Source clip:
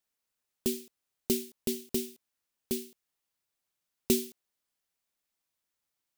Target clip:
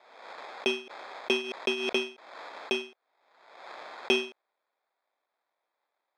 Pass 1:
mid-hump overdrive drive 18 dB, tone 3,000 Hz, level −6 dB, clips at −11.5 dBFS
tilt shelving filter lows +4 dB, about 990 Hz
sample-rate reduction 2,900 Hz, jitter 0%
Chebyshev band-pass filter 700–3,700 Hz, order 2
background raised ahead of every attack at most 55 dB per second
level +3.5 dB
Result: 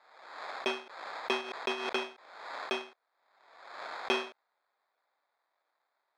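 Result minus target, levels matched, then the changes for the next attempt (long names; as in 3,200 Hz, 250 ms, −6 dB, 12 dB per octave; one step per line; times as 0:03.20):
1,000 Hz band +9.0 dB
change: tilt shelving filter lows +13 dB, about 990 Hz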